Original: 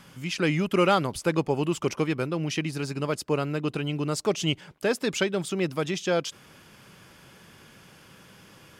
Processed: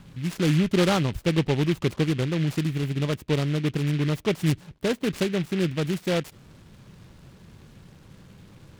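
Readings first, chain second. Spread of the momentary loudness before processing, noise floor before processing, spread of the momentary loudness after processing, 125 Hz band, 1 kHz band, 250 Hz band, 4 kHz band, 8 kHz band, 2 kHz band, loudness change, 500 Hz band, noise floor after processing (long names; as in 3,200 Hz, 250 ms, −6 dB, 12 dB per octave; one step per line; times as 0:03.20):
6 LU, −53 dBFS, 6 LU, +6.5 dB, −4.0 dB, +3.5 dB, 0.0 dB, −3.0 dB, −1.0 dB, +2.0 dB, −0.5 dB, −52 dBFS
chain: RIAA equalisation playback
short delay modulated by noise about 2,300 Hz, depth 0.11 ms
level −3.5 dB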